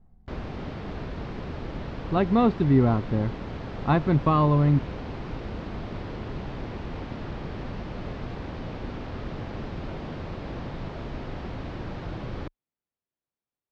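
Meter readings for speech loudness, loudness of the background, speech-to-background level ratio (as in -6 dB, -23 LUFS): -23.0 LUFS, -36.5 LUFS, 13.5 dB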